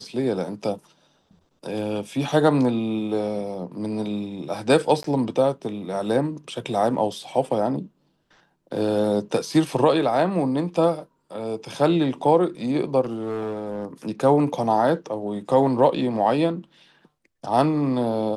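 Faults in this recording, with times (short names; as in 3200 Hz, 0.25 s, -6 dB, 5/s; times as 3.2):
5.03–5.04 gap 13 ms
13.01–13.86 clipped -24 dBFS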